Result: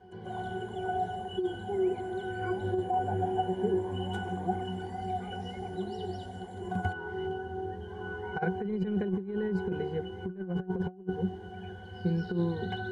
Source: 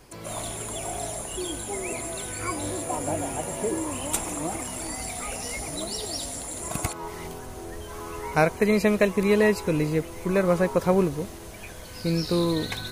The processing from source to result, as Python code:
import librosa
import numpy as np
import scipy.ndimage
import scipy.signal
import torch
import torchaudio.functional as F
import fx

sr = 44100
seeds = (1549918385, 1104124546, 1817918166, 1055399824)

p1 = fx.highpass(x, sr, hz=210.0, slope=6)
p2 = 10.0 ** (-23.0 / 20.0) * np.tanh(p1 / 10.0 ** (-23.0 / 20.0))
p3 = p1 + (p2 * 10.0 ** (-10.0 / 20.0))
p4 = fx.high_shelf(p3, sr, hz=3700.0, db=-5.0)
p5 = fx.octave_resonator(p4, sr, note='F#', decay_s=0.19)
p6 = fx.over_compress(p5, sr, threshold_db=-37.0, ratio=-0.5)
y = p6 * 10.0 ** (8.5 / 20.0)